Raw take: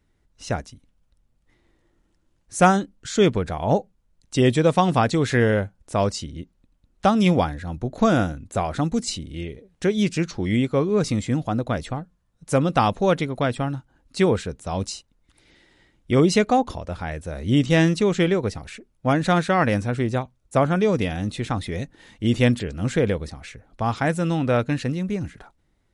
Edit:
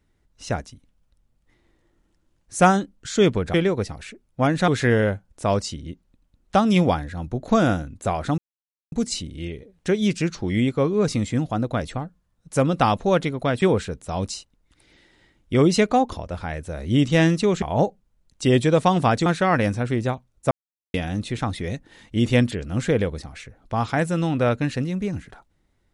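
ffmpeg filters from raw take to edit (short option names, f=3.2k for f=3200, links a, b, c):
-filter_complex "[0:a]asplit=9[a][b][c][d][e][f][g][h][i];[a]atrim=end=3.542[j];[b]atrim=start=18.198:end=19.342[k];[c]atrim=start=5.178:end=8.88,asetpts=PTS-STARTPTS,afade=t=out:st=3.698:d=0.004:c=hsin,apad=pad_dur=0.54[l];[d]atrim=start=8.88:end=13.582,asetpts=PTS-STARTPTS,afade=t=in:d=0.004:c=hsin[m];[e]atrim=start=14.198:end=18.202[n];[f]atrim=start=3.538:end=5.182[o];[g]atrim=start=19.338:end=20.59,asetpts=PTS-STARTPTS,afade=t=out:st=1.248:d=0.004:c=hsin[p];[h]atrim=start=20.59:end=21.02,asetpts=PTS-STARTPTS,volume=0[q];[i]atrim=start=21.02,asetpts=PTS-STARTPTS,afade=t=in:d=0.004:c=hsin[r];[j][k]acrossfade=d=0.004:c1=hsin:c2=hsin[s];[l][m]concat=n=2:v=0:a=1[t];[s][t]acrossfade=d=0.004:c1=hsin:c2=hsin[u];[u][n]acrossfade=d=0.004:c1=hsin:c2=hsin[v];[v][o]acrossfade=d=0.004:c1=hsin:c2=hsin[w];[p][q][r]concat=n=3:v=0:a=1[x];[w][x]acrossfade=d=0.004:c1=hsin:c2=hsin"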